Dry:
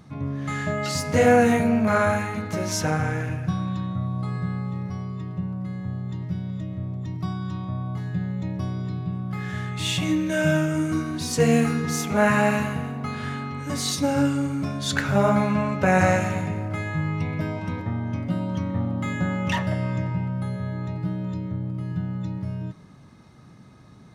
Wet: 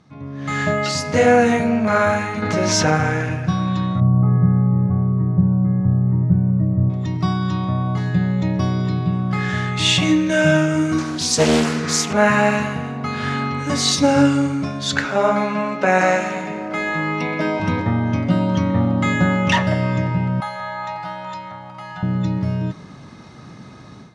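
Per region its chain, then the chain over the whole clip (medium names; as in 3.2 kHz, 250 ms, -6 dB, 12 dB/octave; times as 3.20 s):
2.42–2.95 s: treble shelf 11 kHz -11 dB + level flattener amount 70%
4.00–6.90 s: Gaussian low-pass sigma 6.6 samples + peaking EQ 110 Hz +7.5 dB 1.9 oct
10.98–12.13 s: tone controls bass -1 dB, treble +9 dB + loudspeaker Doppler distortion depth 0.68 ms
15.05–17.60 s: high-pass 200 Hz 24 dB/octave + treble shelf 9.3 kHz -4 dB + hum notches 50/100/150/200/250/300/350 Hz
20.40–22.03 s: high-pass 270 Hz 6 dB/octave + resonant low shelf 560 Hz -13.5 dB, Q 3
whole clip: Chebyshev low-pass 6 kHz, order 2; bass shelf 120 Hz -8 dB; level rider gain up to 15 dB; trim -2 dB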